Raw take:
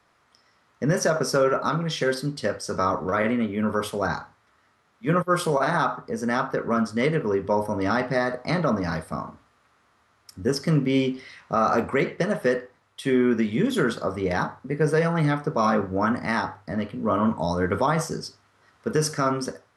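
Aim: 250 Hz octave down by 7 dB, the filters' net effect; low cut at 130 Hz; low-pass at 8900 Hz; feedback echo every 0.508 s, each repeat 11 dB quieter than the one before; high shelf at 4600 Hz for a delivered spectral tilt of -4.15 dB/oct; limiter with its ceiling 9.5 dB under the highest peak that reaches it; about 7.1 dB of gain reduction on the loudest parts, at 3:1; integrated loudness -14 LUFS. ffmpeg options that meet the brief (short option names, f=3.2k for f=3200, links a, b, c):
-af "highpass=130,lowpass=8.9k,equalizer=f=250:t=o:g=-8.5,highshelf=f=4.6k:g=6,acompressor=threshold=-28dB:ratio=3,alimiter=limit=-23.5dB:level=0:latency=1,aecho=1:1:508|1016|1524:0.282|0.0789|0.0221,volume=20dB"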